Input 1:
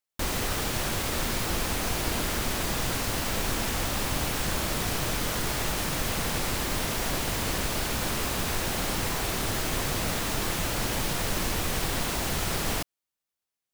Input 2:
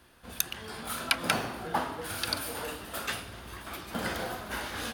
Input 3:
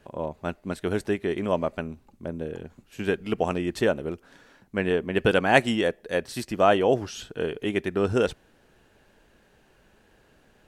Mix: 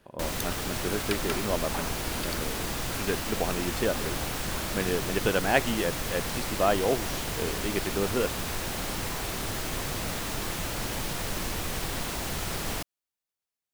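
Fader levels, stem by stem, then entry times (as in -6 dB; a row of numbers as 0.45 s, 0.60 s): -3.5 dB, -8.0 dB, -5.0 dB; 0.00 s, 0.00 s, 0.00 s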